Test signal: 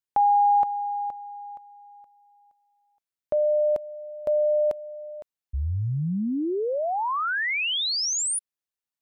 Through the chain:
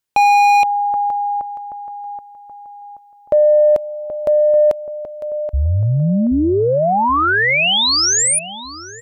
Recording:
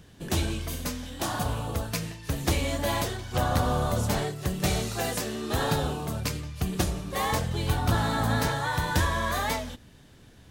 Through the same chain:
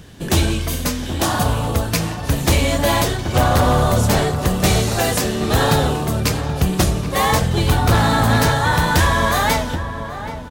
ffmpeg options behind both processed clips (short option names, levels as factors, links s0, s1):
-filter_complex "[0:a]asplit=2[s0][s1];[s1]adelay=778,lowpass=f=1500:p=1,volume=0.316,asplit=2[s2][s3];[s3]adelay=778,lowpass=f=1500:p=1,volume=0.45,asplit=2[s4][s5];[s5]adelay=778,lowpass=f=1500:p=1,volume=0.45,asplit=2[s6][s7];[s7]adelay=778,lowpass=f=1500:p=1,volume=0.45,asplit=2[s8][s9];[s9]adelay=778,lowpass=f=1500:p=1,volume=0.45[s10];[s0][s2][s4][s6][s8][s10]amix=inputs=6:normalize=0,acontrast=52,aeval=exprs='0.237*(abs(mod(val(0)/0.237+3,4)-2)-1)':c=same,volume=1.78"